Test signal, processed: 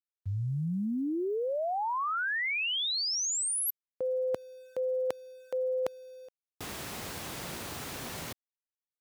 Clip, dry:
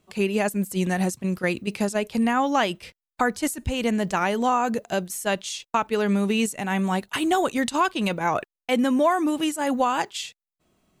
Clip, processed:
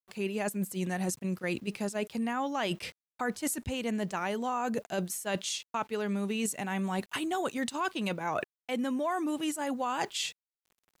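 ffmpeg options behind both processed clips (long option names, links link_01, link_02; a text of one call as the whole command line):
ffmpeg -i in.wav -af "highpass=91,areverse,acompressor=threshold=-33dB:ratio=5,areverse,aeval=exprs='val(0)*gte(abs(val(0)),0.00119)':channel_layout=same,volume=2.5dB" out.wav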